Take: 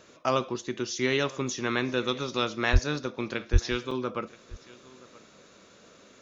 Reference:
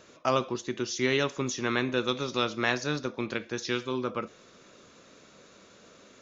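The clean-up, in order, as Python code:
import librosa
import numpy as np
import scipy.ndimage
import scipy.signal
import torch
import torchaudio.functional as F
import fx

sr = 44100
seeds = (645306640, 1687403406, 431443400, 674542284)

y = fx.highpass(x, sr, hz=140.0, slope=24, at=(2.72, 2.84), fade=0.02)
y = fx.highpass(y, sr, hz=140.0, slope=24, at=(3.52, 3.64), fade=0.02)
y = fx.fix_interpolate(y, sr, at_s=(3.91,), length_ms=3.0)
y = fx.fix_echo_inverse(y, sr, delay_ms=977, level_db=-22.0)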